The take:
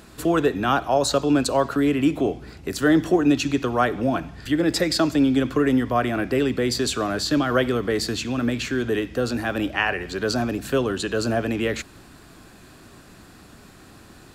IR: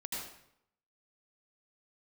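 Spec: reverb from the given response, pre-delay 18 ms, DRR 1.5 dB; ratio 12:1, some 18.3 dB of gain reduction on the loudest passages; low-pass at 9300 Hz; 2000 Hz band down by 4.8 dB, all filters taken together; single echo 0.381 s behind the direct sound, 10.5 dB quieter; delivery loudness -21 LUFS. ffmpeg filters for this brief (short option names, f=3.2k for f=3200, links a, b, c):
-filter_complex "[0:a]lowpass=9.3k,equalizer=f=2k:t=o:g=-6.5,acompressor=threshold=-33dB:ratio=12,aecho=1:1:381:0.299,asplit=2[a][b];[1:a]atrim=start_sample=2205,adelay=18[c];[b][c]afir=irnorm=-1:irlink=0,volume=-2.5dB[d];[a][d]amix=inputs=2:normalize=0,volume=13.5dB"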